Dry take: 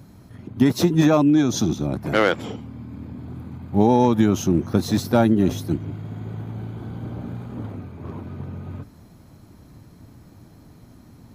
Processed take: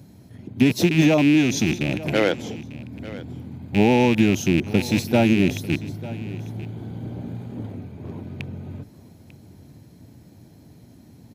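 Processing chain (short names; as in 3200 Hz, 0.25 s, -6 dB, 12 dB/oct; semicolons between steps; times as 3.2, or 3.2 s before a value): rattling part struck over -23 dBFS, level -14 dBFS; HPF 76 Hz; bell 1200 Hz -11 dB 0.67 oct; on a send: echo 0.895 s -17.5 dB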